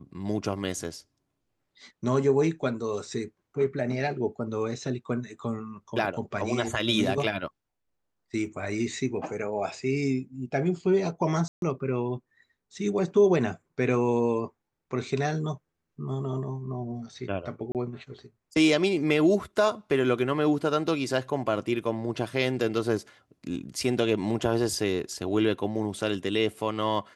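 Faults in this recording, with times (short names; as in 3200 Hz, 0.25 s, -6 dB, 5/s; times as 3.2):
8.46 gap 2.4 ms
11.48–11.62 gap 0.142 s
17.72–17.75 gap 28 ms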